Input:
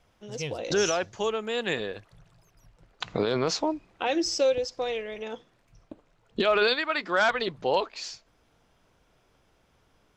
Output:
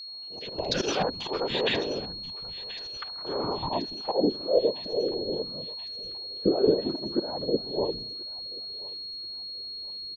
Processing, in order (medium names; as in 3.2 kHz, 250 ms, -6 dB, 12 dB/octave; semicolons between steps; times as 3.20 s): local Wiener filter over 25 samples; peaking EQ 910 Hz +8 dB 0.32 oct; compression 4:1, threshold -25 dBFS, peak gain reduction 7.5 dB; three bands offset in time highs, mids, lows 70/290 ms, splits 200/1300 Hz; 3.12–3.57 s: level held to a coarse grid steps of 12 dB; slow attack 101 ms; low-pass sweep 4.3 kHz -> 370 Hz, 1.62–4.79 s; whisper effect; whistle 4.3 kHz -42 dBFS; on a send: thinning echo 1030 ms, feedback 66%, high-pass 1.1 kHz, level -15 dB; on the sum: trim +4 dB